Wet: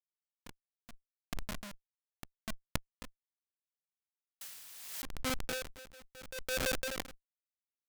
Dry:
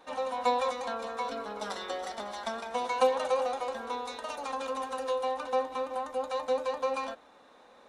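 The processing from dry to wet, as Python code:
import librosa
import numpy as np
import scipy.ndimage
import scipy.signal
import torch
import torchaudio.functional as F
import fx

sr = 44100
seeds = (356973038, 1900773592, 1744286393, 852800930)

y = fx.cabinet(x, sr, low_hz=120.0, low_slope=12, high_hz=7000.0, hz=(690.0, 1800.0, 3100.0, 4500.0), db=(-10, -9, -6, -10))
y = fx.echo_feedback(y, sr, ms=397, feedback_pct=31, wet_db=-13.5)
y = fx.filter_sweep_lowpass(y, sr, from_hz=200.0, to_hz=420.0, start_s=4.83, end_s=5.43, q=5.8)
y = fx.schmitt(y, sr, flips_db=-32.0)
y = fx.quant_dither(y, sr, seeds[0], bits=10, dither='triangular', at=(4.41, 5.02))
y = fx.over_compress(y, sr, threshold_db=-46.0, ratio=-1.0)
y = fx.tilt_shelf(y, sr, db=-6.5, hz=920.0)
y = y * 10.0 ** (-23 * (0.5 - 0.5 * np.cos(2.0 * np.pi * 0.75 * np.arange(len(y)) / sr)) / 20.0)
y = F.gain(torch.from_numpy(y), 17.0).numpy()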